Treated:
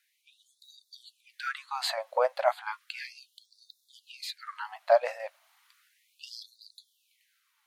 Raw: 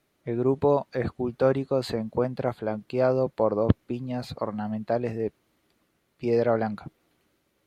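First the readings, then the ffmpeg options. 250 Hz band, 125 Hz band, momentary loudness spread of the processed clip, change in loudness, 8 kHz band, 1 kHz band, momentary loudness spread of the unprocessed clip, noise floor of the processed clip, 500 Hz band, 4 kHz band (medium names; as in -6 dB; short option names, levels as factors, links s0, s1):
under -40 dB, under -40 dB, 23 LU, -4.5 dB, no reading, -1.0 dB, 9 LU, -74 dBFS, -7.5 dB, +6.0 dB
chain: -af "dynaudnorm=f=390:g=9:m=3.76,afftfilt=real='re*gte(b*sr/1024,500*pow(3600/500,0.5+0.5*sin(2*PI*0.34*pts/sr)))':imag='im*gte(b*sr/1024,500*pow(3600/500,0.5+0.5*sin(2*PI*0.34*pts/sr)))':win_size=1024:overlap=0.75,volume=1.33"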